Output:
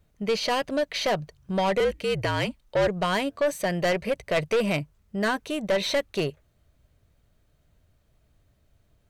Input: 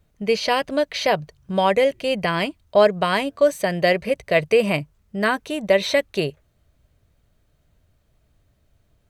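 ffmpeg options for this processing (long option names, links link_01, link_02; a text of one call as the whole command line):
ffmpeg -i in.wav -filter_complex "[0:a]aeval=exprs='(tanh(7.08*val(0)+0.15)-tanh(0.15))/7.08':channel_layout=same,asettb=1/sr,asplit=3[link_01][link_02][link_03];[link_01]atrim=end=1.804[link_04];[link_02]atrim=start=1.8:end=2.88,asetpts=PTS-STARTPTS,afade=type=in:duration=0.004:curve=qsin,afade=type=out:start_time=1.076:duration=0.004:curve=qsin,afreqshift=-58[link_05];[link_03]atrim=start=2.876[link_06];[link_04][link_05]acrossfade=duration=0.004:curve1=hsin:curve2=qsin[link_07];[link_07][link_06]acrossfade=duration=0.004:curve1=qsin:curve2=hsin,volume=-1.5dB" out.wav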